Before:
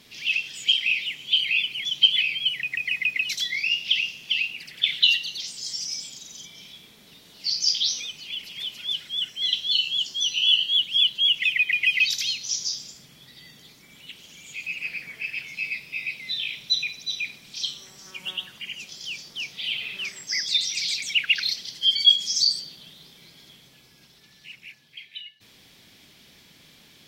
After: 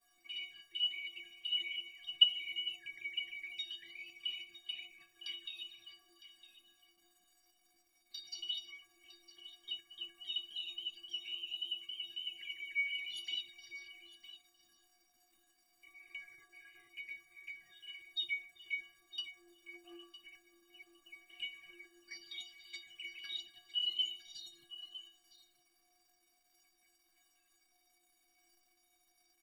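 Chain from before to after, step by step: level-controlled noise filter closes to 850 Hz, open at -19 dBFS; gate -54 dBFS, range -13 dB; peaking EQ 6.2 kHz -11 dB 1 oct; level held to a coarse grid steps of 16 dB; tape speed -8%; crackle 580 per s -48 dBFS; touch-sensitive flanger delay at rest 4.3 ms, full sweep at -31 dBFS; inharmonic resonator 340 Hz, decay 0.43 s, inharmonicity 0.03; delay 958 ms -14.5 dB; trim +10.5 dB

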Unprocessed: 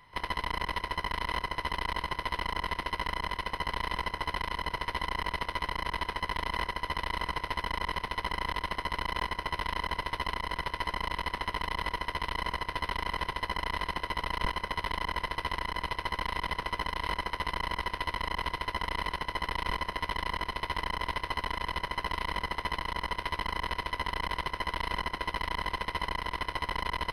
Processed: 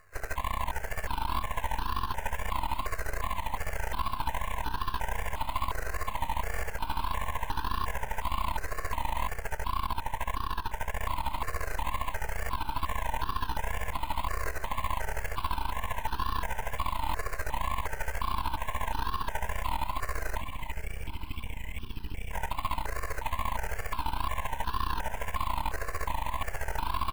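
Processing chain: knee-point frequency compression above 1.1 kHz 1.5:1; 20.40–22.32 s: spectral selection erased 440–2100 Hz; in parallel at +2.5 dB: sample-rate reducer 5.4 kHz, jitter 0%; on the sum: wow and flutter 140 cents; half-wave rectifier; feedback delay 438 ms, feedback 59%, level -12 dB; on a send at -12.5 dB: reverberation RT60 0.25 s, pre-delay 3 ms; 9.30–11.02 s: on the sum: transient shaper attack -1 dB, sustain -6 dB; stepped phaser 2.8 Hz 920–2100 Hz; trim -1.5 dB

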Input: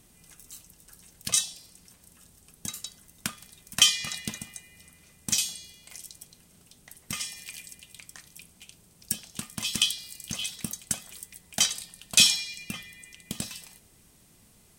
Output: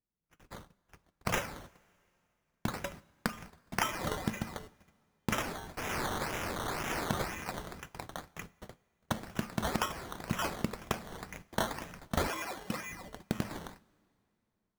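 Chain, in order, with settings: 5.77–7.22 s: zero-crossing glitches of -31 dBFS; gate -49 dBFS, range -37 dB; saturation -6 dBFS, distortion -23 dB; level rider gain up to 8.5 dB; treble shelf 2.4 kHz -11.5 dB; decimation with a swept rate 14×, swing 60% 2 Hz; 12.27–12.91 s: high-pass 330 Hz 6 dB/octave; compression 16:1, threshold -30 dBFS, peak gain reduction 14 dB; two-slope reverb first 0.48 s, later 2.7 s, from -14 dB, DRR 18 dB; trim +2.5 dB

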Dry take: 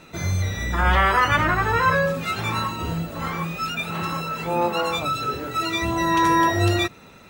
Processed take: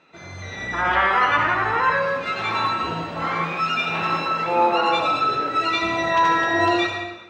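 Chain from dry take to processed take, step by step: high-pass 560 Hz 6 dB/octave; treble shelf 8.4 kHz -9 dB; level rider gain up to 12 dB; distance through air 130 m; reverberation RT60 1.0 s, pre-delay 62 ms, DRR 1 dB; trim -6 dB

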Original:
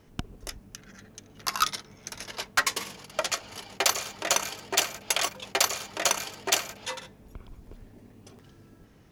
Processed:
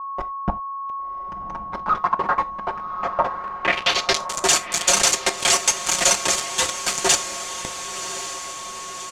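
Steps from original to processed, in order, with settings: slices played last to first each 143 ms, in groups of 5; bass shelf 63 Hz +2.5 dB; comb 5.6 ms, depth 86%; saturation -21.5 dBFS, distortion -8 dB; bit crusher 5-bit; whistle 1.1 kHz -43 dBFS; low-pass sweep 1 kHz -> 7.9 kHz, 3.28–4.32 s; echo that smears into a reverb 1094 ms, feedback 58%, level -10.5 dB; gated-style reverb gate 110 ms falling, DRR 11 dB; trim +7.5 dB

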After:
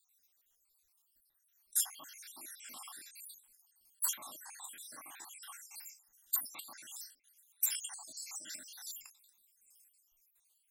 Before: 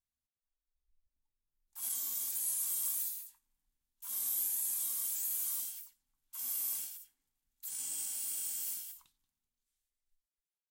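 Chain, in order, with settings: random holes in the spectrogram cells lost 72%; low-pass that closes with the level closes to 1.3 kHz, closed at -40 dBFS; RIAA curve recording; trim +14.5 dB

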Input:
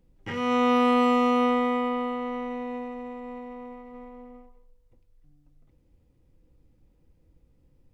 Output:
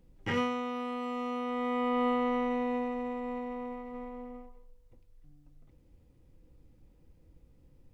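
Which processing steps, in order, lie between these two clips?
compressor with a negative ratio -29 dBFS, ratio -1; trim -2.5 dB

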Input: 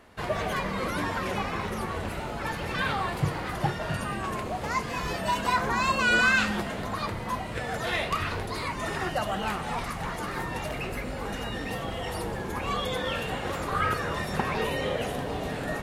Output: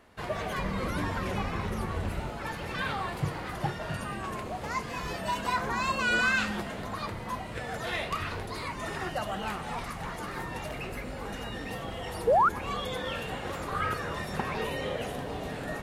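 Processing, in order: 0.58–2.30 s: bass shelf 170 Hz +9.5 dB; 12.27–12.49 s: painted sound rise 430–1500 Hz -17 dBFS; trim -4 dB

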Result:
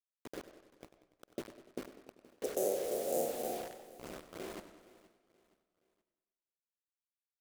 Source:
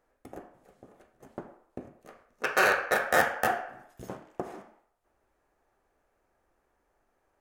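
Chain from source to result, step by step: 2.57–4.57 s: spectral blur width 140 ms; inverse Chebyshev band-stop 1.2–3.6 kHz, stop band 50 dB; level-controlled noise filter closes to 2.8 kHz, open at -36 dBFS; high-pass 280 Hz 12 dB/octave; peaking EQ 1.8 kHz -10.5 dB 2.5 oct; word length cut 8-bit, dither none; feedback delay 472 ms, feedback 39%, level -19.5 dB; reverberation RT60 0.65 s, pre-delay 95 ms, DRR 16 dB; modulated delay 97 ms, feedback 61%, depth 120 cents, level -13 dB; trim +3 dB

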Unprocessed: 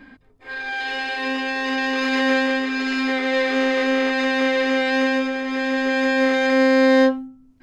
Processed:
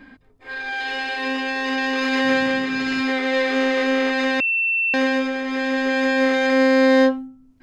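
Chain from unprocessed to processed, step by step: 2.24–3.00 s: band noise 89–330 Hz -41 dBFS; 4.40–4.94 s: bleep 2.69 kHz -17.5 dBFS

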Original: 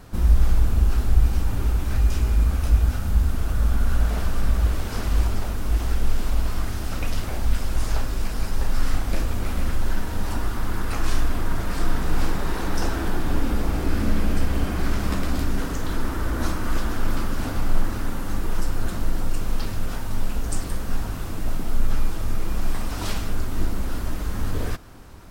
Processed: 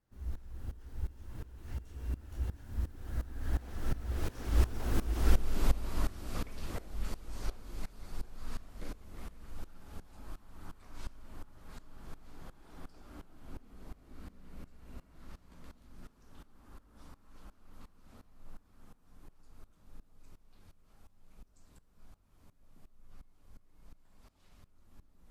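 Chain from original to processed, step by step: Doppler pass-by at 5.26 s, 41 m/s, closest 23 m; dynamic bell 350 Hz, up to +5 dB, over -53 dBFS, Q 1.5; sawtooth tremolo in dB swelling 2.8 Hz, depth 19 dB; trim +1 dB

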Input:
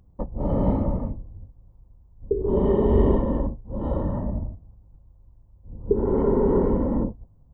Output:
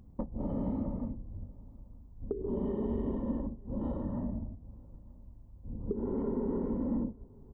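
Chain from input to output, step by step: compression 4:1, threshold -37 dBFS, peak gain reduction 20 dB; peaking EQ 240 Hz +9 dB 0.66 oct; echo from a far wall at 160 m, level -26 dB

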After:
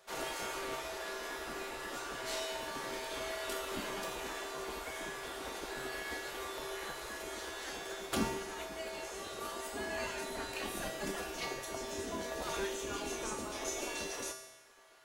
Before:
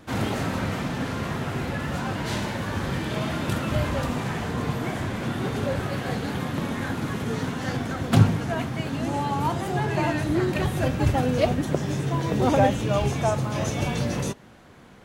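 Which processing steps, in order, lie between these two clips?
tone controls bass +10 dB, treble +7 dB; spectral gate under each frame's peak -15 dB weak; feedback comb 130 Hz, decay 0.99 s, harmonics odd, mix 90%; reverberation RT60 1.3 s, pre-delay 50 ms, DRR 14.5 dB; trim +7 dB

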